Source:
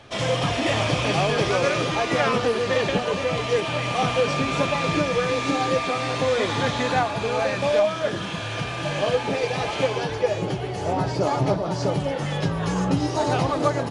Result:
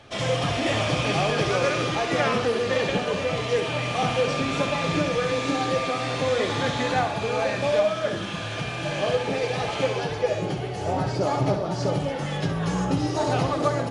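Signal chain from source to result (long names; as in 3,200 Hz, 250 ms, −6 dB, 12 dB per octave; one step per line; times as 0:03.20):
notch filter 970 Hz, Q 18
on a send: flutter between parallel walls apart 11.4 metres, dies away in 0.44 s
on the sum: level −2 dB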